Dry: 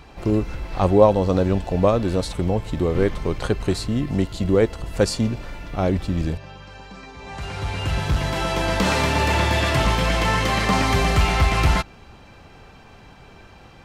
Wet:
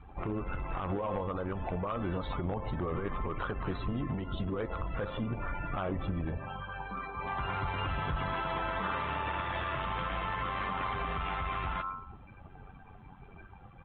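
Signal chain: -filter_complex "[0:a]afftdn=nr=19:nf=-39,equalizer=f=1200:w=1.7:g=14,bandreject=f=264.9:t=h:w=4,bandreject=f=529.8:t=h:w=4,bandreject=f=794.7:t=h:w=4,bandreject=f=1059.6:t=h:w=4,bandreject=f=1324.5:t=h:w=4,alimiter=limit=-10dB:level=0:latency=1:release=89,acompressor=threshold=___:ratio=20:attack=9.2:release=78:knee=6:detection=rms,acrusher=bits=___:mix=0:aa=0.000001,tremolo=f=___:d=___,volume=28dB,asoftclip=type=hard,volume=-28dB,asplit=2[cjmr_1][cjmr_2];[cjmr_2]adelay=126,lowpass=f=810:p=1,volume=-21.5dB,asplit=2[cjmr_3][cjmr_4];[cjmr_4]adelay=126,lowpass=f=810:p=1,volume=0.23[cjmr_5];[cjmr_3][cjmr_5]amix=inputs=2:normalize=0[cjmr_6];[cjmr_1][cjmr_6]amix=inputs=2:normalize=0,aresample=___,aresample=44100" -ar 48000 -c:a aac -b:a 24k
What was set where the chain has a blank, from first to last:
-28dB, 11, 93, 0.571, 8000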